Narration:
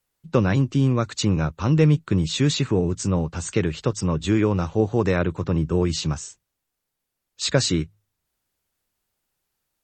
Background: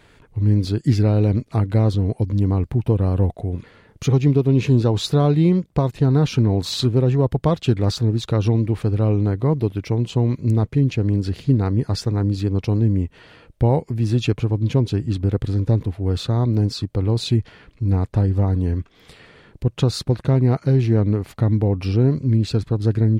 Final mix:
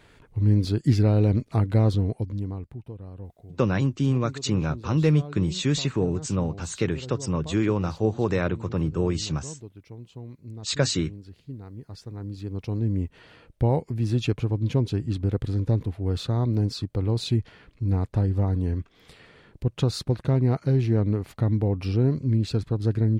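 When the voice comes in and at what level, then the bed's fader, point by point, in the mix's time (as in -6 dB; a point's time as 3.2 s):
3.25 s, -3.5 dB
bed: 1.97 s -3 dB
2.93 s -21.5 dB
11.72 s -21.5 dB
13.07 s -5 dB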